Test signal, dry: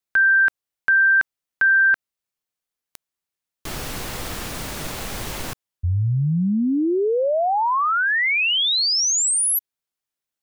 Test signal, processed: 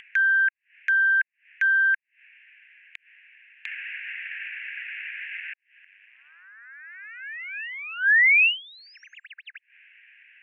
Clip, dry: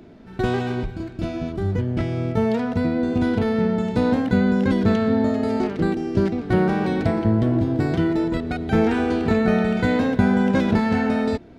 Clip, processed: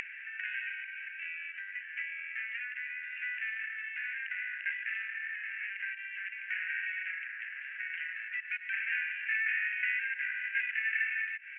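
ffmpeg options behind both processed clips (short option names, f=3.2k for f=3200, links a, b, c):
-af "aeval=exprs='(tanh(10*val(0)+0.3)-tanh(0.3))/10':c=same,asuperpass=centerf=2100:order=12:qfactor=1.8,acompressor=mode=upward:threshold=-44dB:ratio=4:attack=13:release=121:knee=2.83:detection=peak,volume=6.5dB"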